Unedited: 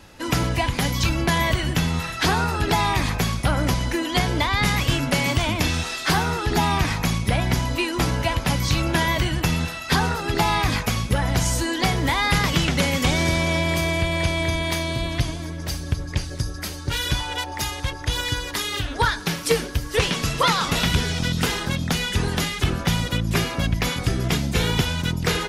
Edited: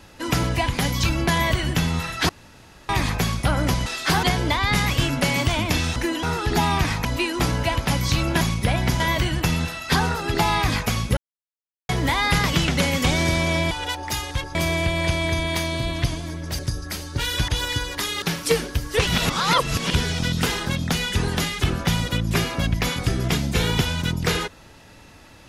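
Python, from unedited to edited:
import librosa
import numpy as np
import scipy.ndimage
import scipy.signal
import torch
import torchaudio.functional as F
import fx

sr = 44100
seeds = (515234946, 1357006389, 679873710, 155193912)

y = fx.edit(x, sr, fx.room_tone_fill(start_s=2.29, length_s=0.6),
    fx.swap(start_s=3.86, length_s=0.27, other_s=5.86, other_length_s=0.37),
    fx.move(start_s=7.05, length_s=0.59, to_s=9.0),
    fx.silence(start_s=11.17, length_s=0.72),
    fx.cut(start_s=15.75, length_s=0.56),
    fx.move(start_s=17.2, length_s=0.84, to_s=13.71),
    fx.cut(start_s=18.78, length_s=0.44),
    fx.reverse_span(start_s=20.07, length_s=0.87), tone=tone)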